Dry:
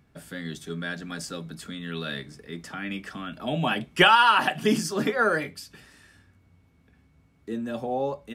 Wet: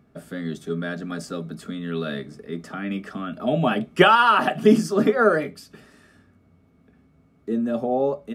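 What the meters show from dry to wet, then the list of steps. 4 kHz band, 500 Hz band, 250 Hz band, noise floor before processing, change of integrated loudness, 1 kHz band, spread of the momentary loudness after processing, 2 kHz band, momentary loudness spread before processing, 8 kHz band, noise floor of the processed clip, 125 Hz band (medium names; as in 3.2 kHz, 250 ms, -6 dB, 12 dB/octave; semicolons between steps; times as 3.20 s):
-3.0 dB, +7.5 dB, +7.0 dB, -62 dBFS, +3.0 dB, +2.0 dB, 17 LU, 0.0 dB, 20 LU, -3.5 dB, -59 dBFS, +4.5 dB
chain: small resonant body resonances 230/410/610/1200 Hz, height 11 dB, ringing for 20 ms; trim -3.5 dB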